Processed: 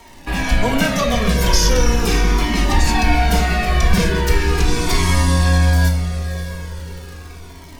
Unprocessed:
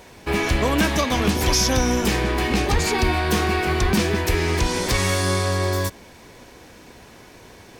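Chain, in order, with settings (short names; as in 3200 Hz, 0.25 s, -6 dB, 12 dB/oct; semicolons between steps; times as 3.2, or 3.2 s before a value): frequency shift -15 Hz; shoebox room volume 590 m³, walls furnished, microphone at 1.7 m; crackle 89/s -30 dBFS; diffused feedback echo 0.602 s, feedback 46%, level -11.5 dB; cascading flanger falling 0.39 Hz; gain +4.5 dB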